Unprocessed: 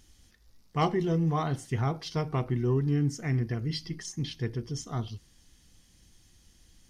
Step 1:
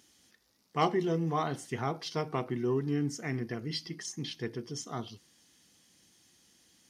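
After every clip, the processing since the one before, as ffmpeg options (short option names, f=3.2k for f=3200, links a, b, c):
-af "highpass=220"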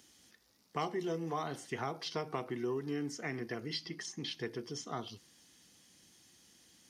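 -filter_complex "[0:a]acrossover=split=320|5300[a][b][c];[a]acompressor=threshold=-47dB:ratio=4[d];[b]acompressor=threshold=-36dB:ratio=4[e];[c]acompressor=threshold=-55dB:ratio=4[f];[d][e][f]amix=inputs=3:normalize=0,volume=1dB"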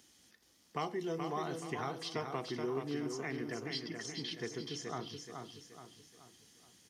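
-af "aecho=1:1:426|852|1278|1704|2130:0.531|0.228|0.0982|0.0422|0.0181,volume=-1.5dB"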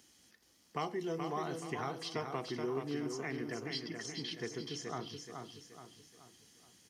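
-af "bandreject=f=3.6k:w=20"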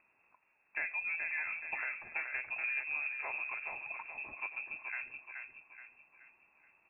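-af "lowpass=f=2.4k:t=q:w=0.5098,lowpass=f=2.4k:t=q:w=0.6013,lowpass=f=2.4k:t=q:w=0.9,lowpass=f=2.4k:t=q:w=2.563,afreqshift=-2800"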